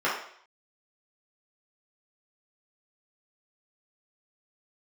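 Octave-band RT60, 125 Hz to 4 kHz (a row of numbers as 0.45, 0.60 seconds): 0.45, 0.55, 0.60, 0.60, 0.60, 0.60 seconds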